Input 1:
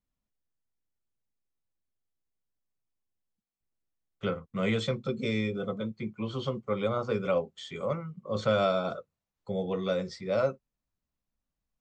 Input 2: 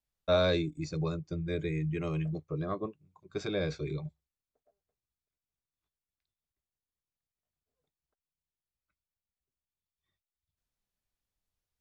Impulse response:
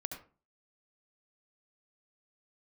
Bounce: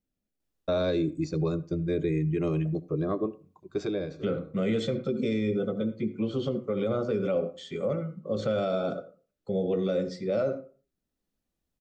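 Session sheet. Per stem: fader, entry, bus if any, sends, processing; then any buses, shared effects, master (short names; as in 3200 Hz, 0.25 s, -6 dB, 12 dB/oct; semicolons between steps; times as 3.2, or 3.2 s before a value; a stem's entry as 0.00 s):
-4.5 dB, 0.00 s, send -5.5 dB, bell 1000 Hz -11 dB 0.37 oct
-1.5 dB, 0.40 s, send -14 dB, auto duck -19 dB, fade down 0.40 s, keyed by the first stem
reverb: on, RT60 0.35 s, pre-delay 65 ms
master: bell 320 Hz +10 dB 1.8 oct; notch 2200 Hz, Q 23; limiter -19 dBFS, peak gain reduction 7 dB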